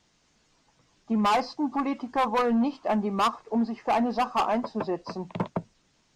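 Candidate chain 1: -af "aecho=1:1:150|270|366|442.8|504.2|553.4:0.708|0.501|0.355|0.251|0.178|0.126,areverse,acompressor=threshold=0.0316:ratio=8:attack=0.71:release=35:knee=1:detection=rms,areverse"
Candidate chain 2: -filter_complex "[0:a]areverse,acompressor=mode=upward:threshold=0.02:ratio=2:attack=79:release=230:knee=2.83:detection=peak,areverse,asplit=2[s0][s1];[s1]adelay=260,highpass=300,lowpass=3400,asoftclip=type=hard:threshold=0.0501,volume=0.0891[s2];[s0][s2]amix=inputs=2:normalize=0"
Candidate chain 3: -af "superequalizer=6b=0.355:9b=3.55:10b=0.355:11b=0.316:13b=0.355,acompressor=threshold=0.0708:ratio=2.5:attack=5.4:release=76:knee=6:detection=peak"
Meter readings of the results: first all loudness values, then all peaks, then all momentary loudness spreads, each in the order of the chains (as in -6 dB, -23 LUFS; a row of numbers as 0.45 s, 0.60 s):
-34.5 LUFS, -27.0 LUFS, -27.0 LUFS; -25.0 dBFS, -16.5 dBFS, -14.0 dBFS; 3 LU, 9 LU, 8 LU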